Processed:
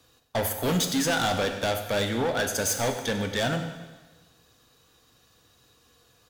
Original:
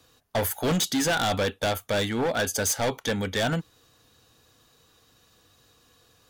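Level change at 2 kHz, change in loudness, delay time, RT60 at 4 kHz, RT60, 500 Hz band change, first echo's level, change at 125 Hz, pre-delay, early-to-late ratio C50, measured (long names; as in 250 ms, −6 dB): −0.5 dB, −0.5 dB, 97 ms, 1.2 s, 1.3 s, −0.5 dB, −15.5 dB, −0.5 dB, 6 ms, 7.5 dB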